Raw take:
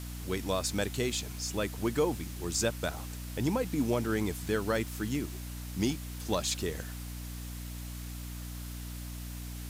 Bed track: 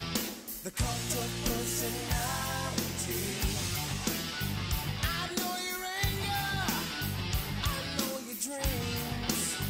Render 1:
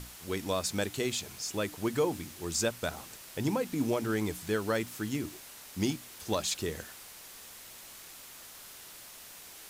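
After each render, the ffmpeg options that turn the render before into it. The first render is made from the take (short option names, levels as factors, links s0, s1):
-af "bandreject=f=60:t=h:w=6,bandreject=f=120:t=h:w=6,bandreject=f=180:t=h:w=6,bandreject=f=240:t=h:w=6,bandreject=f=300:t=h:w=6"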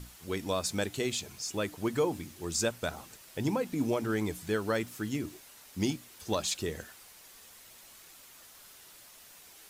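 -af "afftdn=nr=6:nf=-50"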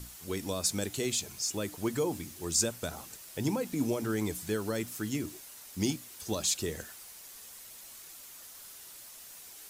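-filter_complex "[0:a]acrossover=split=450|5100[s0][s1][s2];[s1]alimiter=level_in=2.11:limit=0.0631:level=0:latency=1:release=32,volume=0.473[s3];[s2]acontrast=55[s4];[s0][s3][s4]amix=inputs=3:normalize=0"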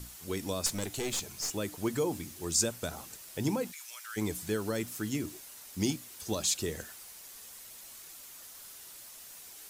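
-filter_complex "[0:a]asettb=1/sr,asplit=3[s0][s1][s2];[s0]atrim=end=0.664[s3];[s1]atrim=start=0.66:end=1.55,asetpts=PTS-STARTPTS,afade=t=in:d=0.004:c=qsin,afade=t=out:st=0.886:d=0.004:c=qsin,aeval=exprs='clip(val(0),-1,0.0178)':c=same[s4];[s2]atrim=start=1.546[s5];[s3][s4]acrossfade=d=0.004:c1=hsin:c2=qsin[s6];[s6][s5]acrossfade=d=0.004:c1=qsin:c2=hsin,asplit=3[s7][s8][s9];[s7]afade=t=out:st=3.71:d=0.02[s10];[s8]highpass=f=1400:w=0.5412,highpass=f=1400:w=1.3066,afade=t=in:st=3.71:d=0.02,afade=t=out:st=4.16:d=0.02[s11];[s9]afade=t=in:st=4.16:d=0.02[s12];[s10][s11][s12]amix=inputs=3:normalize=0"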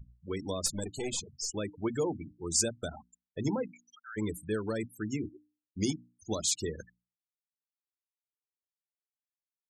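-af "afftfilt=real='re*gte(hypot(re,im),0.02)':imag='im*gte(hypot(re,im),0.02)':win_size=1024:overlap=0.75,bandreject=f=60:t=h:w=6,bandreject=f=120:t=h:w=6,bandreject=f=180:t=h:w=6,bandreject=f=240:t=h:w=6,bandreject=f=300:t=h:w=6"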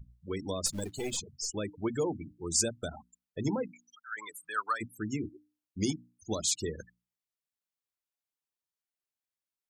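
-filter_complex "[0:a]asettb=1/sr,asplit=3[s0][s1][s2];[s0]atrim=end=0.664[s3];[s1]atrim=start=0.66:end=1.17,asetpts=PTS-STARTPTS,afade=t=in:d=0.004:c=qsin,afade=t=out:st=0.506:d=0.004:c=qsin,acrusher=bits=5:mode=log:mix=0:aa=0.000001[s4];[s2]atrim=start=1.166[s5];[s3][s4]acrossfade=d=0.004:c1=hsin:c2=qsin[s6];[s6][s5]acrossfade=d=0.004:c1=qsin:c2=hsin,asplit=3[s7][s8][s9];[s7]afade=t=out:st=4.11:d=0.02[s10];[s8]highpass=f=1200:t=q:w=8.4,afade=t=in:st=4.11:d=0.02,afade=t=out:st=4.8:d=0.02[s11];[s9]afade=t=in:st=4.8:d=0.02[s12];[s10][s11][s12]amix=inputs=3:normalize=0"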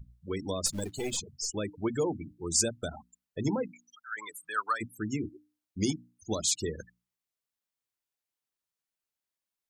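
-af "volume=1.19"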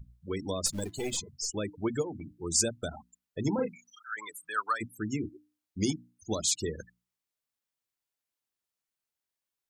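-filter_complex "[0:a]asettb=1/sr,asplit=3[s0][s1][s2];[s0]atrim=end=0.774[s3];[s1]atrim=start=0.77:end=1.29,asetpts=PTS-STARTPTS,afade=t=in:d=0.004:c=qsin,afade=t=out:st=0.516:d=0.004:c=qsin,bandreject=f=338:t=h:w=4,bandreject=f=676:t=h:w=4,bandreject=f=1014:t=h:w=4,bandreject=f=1352:t=h:w=4,bandreject=f=1690:t=h:w=4,bandreject=f=2028:t=h:w=4[s4];[s2]atrim=start=1.286[s5];[s3][s4]acrossfade=d=0.004:c1=hsin:c2=qsin[s6];[s6][s5]acrossfade=d=0.004:c1=qsin:c2=hsin,asplit=3[s7][s8][s9];[s7]afade=t=out:st=2.01:d=0.02[s10];[s8]acompressor=threshold=0.0158:ratio=3:attack=3.2:release=140:knee=1:detection=peak,afade=t=in:st=2.01:d=0.02,afade=t=out:st=2.41:d=0.02[s11];[s9]afade=t=in:st=2.41:d=0.02[s12];[s10][s11][s12]amix=inputs=3:normalize=0,asettb=1/sr,asplit=3[s13][s14][s15];[s13]atrim=end=3.554[s16];[s14]atrim=start=3.55:end=4.14,asetpts=PTS-STARTPTS,afade=t=in:d=0.004:c=qsin,afade=t=out:st=0.586:d=0.004:c=qsin,asplit=2[s17][s18];[s18]adelay=35,volume=0.708[s19];[s17][s19]amix=inputs=2:normalize=0,atrim=end_sample=26019[s20];[s15]atrim=start=4.136[s21];[s16][s20]acrossfade=d=0.004:c1=hsin:c2=qsin[s22];[s22][s21]acrossfade=d=0.004:c1=qsin:c2=hsin"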